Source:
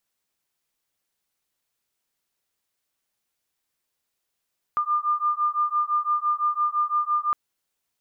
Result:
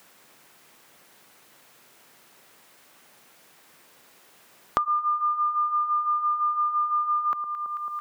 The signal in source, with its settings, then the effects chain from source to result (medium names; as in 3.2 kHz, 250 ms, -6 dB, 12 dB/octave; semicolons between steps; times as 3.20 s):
beating tones 1.2 kHz, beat 5.9 Hz, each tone -24 dBFS 2.56 s
on a send: echo whose repeats swap between lows and highs 110 ms, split 1.2 kHz, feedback 67%, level -13 dB; on the sum: three bands compressed up and down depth 100%